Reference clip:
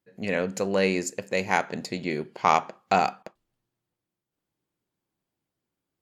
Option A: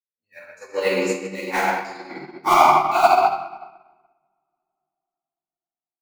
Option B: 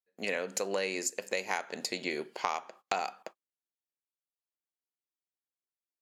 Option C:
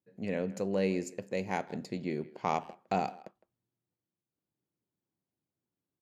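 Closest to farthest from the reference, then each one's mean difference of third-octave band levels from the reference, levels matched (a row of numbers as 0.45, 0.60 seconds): C, B, A; 3.5, 6.5, 12.5 decibels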